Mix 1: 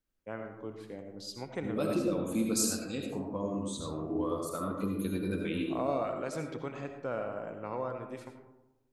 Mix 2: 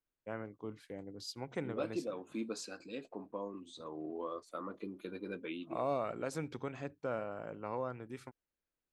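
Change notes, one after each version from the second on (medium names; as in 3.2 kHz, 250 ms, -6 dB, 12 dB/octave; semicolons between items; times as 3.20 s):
second voice: add band-pass 310–3500 Hz; reverb: off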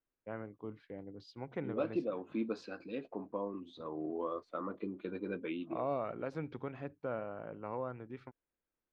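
second voice +4.0 dB; master: add distance through air 310 m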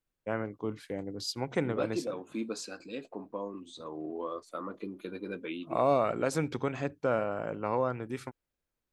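first voice +9.0 dB; master: remove distance through air 310 m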